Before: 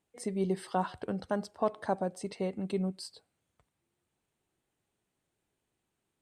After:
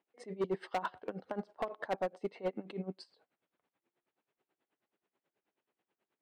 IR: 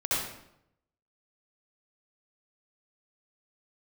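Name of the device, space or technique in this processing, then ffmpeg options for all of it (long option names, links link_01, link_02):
helicopter radio: -af "highpass=300,lowpass=2600,aeval=exprs='val(0)*pow(10,-20*(0.5-0.5*cos(2*PI*9.3*n/s))/20)':channel_layout=same,asoftclip=type=hard:threshold=-33dB,volume=5.5dB"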